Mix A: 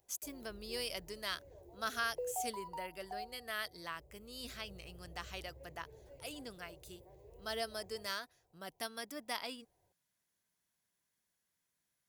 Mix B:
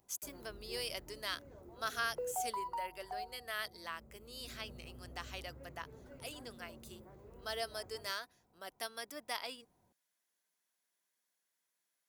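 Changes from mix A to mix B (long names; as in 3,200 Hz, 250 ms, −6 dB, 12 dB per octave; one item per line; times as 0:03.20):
speech: add high-pass filter 350 Hz 12 dB per octave
background: remove phaser with its sweep stopped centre 550 Hz, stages 4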